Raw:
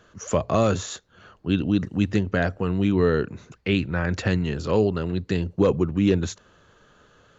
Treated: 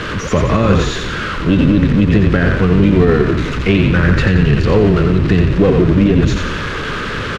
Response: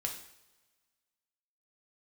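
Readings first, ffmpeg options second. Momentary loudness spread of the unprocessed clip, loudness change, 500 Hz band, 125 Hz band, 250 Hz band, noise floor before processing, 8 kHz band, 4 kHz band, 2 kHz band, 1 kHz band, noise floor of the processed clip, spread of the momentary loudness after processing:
11 LU, +10.5 dB, +9.0 dB, +13.5 dB, +11.0 dB, −58 dBFS, can't be measured, +11.0 dB, +13.0 dB, +10.0 dB, −22 dBFS, 9 LU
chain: -filter_complex "[0:a]aeval=exprs='val(0)+0.5*0.0596*sgn(val(0))':channel_layout=same,lowpass=2900,equalizer=frequency=740:width=2.6:gain=-15,tremolo=f=280:d=0.4,asplit=2[link_01][link_02];[link_02]asplit=6[link_03][link_04][link_05][link_06][link_07][link_08];[link_03]adelay=88,afreqshift=-34,volume=-5dB[link_09];[link_04]adelay=176,afreqshift=-68,volume=-10.8dB[link_10];[link_05]adelay=264,afreqshift=-102,volume=-16.7dB[link_11];[link_06]adelay=352,afreqshift=-136,volume=-22.5dB[link_12];[link_07]adelay=440,afreqshift=-170,volume=-28.4dB[link_13];[link_08]adelay=528,afreqshift=-204,volume=-34.2dB[link_14];[link_09][link_10][link_11][link_12][link_13][link_14]amix=inputs=6:normalize=0[link_15];[link_01][link_15]amix=inputs=2:normalize=0,alimiter=level_in=13dB:limit=-1dB:release=50:level=0:latency=1,volume=-1dB"

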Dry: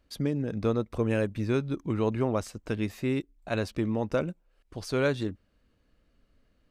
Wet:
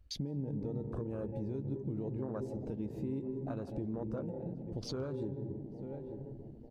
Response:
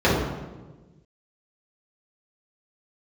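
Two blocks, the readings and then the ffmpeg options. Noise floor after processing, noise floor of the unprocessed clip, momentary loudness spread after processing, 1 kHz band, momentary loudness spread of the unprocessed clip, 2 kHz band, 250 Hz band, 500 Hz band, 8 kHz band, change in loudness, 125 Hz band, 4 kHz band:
−50 dBFS, −70 dBFS, 6 LU, −14.0 dB, 7 LU, −24.0 dB, −8.0 dB, −10.5 dB, can't be measured, −10.0 dB, −7.0 dB, −7.5 dB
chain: -filter_complex "[0:a]equalizer=frequency=1400:width=0.46:gain=-3,asplit=2[link_01][link_02];[link_02]adelay=891,lowpass=frequency=1900:poles=1,volume=-21.5dB,asplit=2[link_03][link_04];[link_04]adelay=891,lowpass=frequency=1900:poles=1,volume=0.5,asplit=2[link_05][link_06];[link_06]adelay=891,lowpass=frequency=1900:poles=1,volume=0.5,asplit=2[link_07][link_08];[link_08]adelay=891,lowpass=frequency=1900:poles=1,volume=0.5[link_09];[link_01][link_03][link_05][link_07][link_09]amix=inputs=5:normalize=0,alimiter=level_in=1.5dB:limit=-24dB:level=0:latency=1:release=182,volume=-1.5dB,asplit=2[link_10][link_11];[link_11]adelay=15,volume=-12dB[link_12];[link_10][link_12]amix=inputs=2:normalize=0,asplit=2[link_13][link_14];[1:a]atrim=start_sample=2205,adelay=146[link_15];[link_14][link_15]afir=irnorm=-1:irlink=0,volume=-32.5dB[link_16];[link_13][link_16]amix=inputs=2:normalize=0,acompressor=threshold=-49dB:ratio=2.5,afwtdn=0.00224,volume=8dB"

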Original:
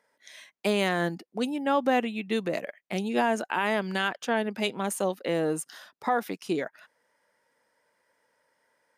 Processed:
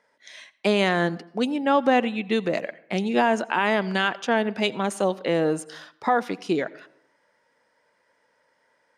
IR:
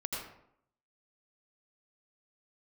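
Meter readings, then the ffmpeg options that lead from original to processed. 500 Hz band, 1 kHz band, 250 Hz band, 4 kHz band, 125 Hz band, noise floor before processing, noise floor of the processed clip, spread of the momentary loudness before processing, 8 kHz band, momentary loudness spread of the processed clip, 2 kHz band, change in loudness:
+4.5 dB, +4.5 dB, +4.5 dB, +4.5 dB, +4.5 dB, −75 dBFS, −68 dBFS, 7 LU, −1.5 dB, 7 LU, +4.5 dB, +4.5 dB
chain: -filter_complex "[0:a]lowpass=6500,asplit=2[link_01][link_02];[1:a]atrim=start_sample=2205[link_03];[link_02][link_03]afir=irnorm=-1:irlink=0,volume=-20.5dB[link_04];[link_01][link_04]amix=inputs=2:normalize=0,volume=4dB"

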